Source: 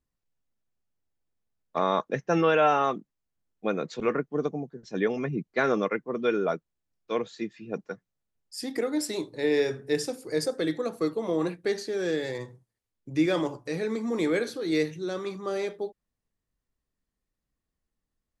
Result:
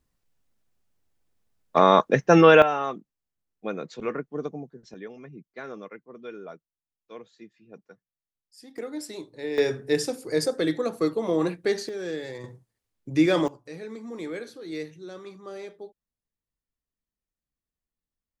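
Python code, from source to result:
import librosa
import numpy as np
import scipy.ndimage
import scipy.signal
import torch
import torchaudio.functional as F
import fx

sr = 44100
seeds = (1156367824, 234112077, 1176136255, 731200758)

y = fx.gain(x, sr, db=fx.steps((0.0, 8.5), (2.62, -3.5), (4.94, -14.0), (8.78, -6.5), (9.58, 3.0), (11.89, -4.0), (12.44, 4.0), (13.48, -8.5)))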